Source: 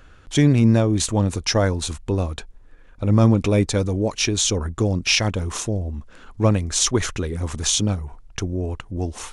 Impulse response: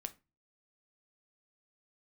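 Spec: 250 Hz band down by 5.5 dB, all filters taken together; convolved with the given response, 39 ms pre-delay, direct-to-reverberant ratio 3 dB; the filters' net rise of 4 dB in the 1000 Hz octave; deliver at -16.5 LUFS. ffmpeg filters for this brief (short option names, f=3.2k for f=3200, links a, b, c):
-filter_complex "[0:a]equalizer=f=250:t=o:g=-7.5,equalizer=f=1k:t=o:g=5.5,asplit=2[a][b];[1:a]atrim=start_sample=2205,adelay=39[c];[b][c]afir=irnorm=-1:irlink=0,volume=-0.5dB[d];[a][d]amix=inputs=2:normalize=0,volume=4dB"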